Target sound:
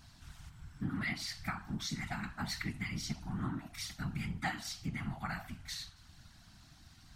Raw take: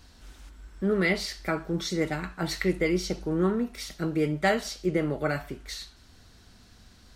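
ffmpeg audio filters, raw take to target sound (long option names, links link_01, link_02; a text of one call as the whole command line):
ffmpeg -i in.wav -af "afftfilt=real='re*(1-between(b*sr/4096,230,670))':imag='im*(1-between(b*sr/4096,230,670))':win_size=4096:overlap=0.75,acompressor=threshold=-33dB:ratio=2.5,afftfilt=real='hypot(re,im)*cos(2*PI*random(0))':imag='hypot(re,im)*sin(2*PI*random(1))':win_size=512:overlap=0.75,volume=2.5dB" out.wav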